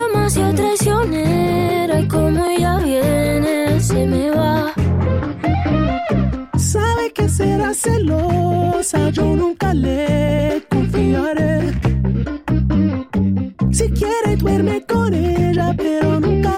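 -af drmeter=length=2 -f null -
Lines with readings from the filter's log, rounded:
Channel 1: DR: 5.0
Overall DR: 5.0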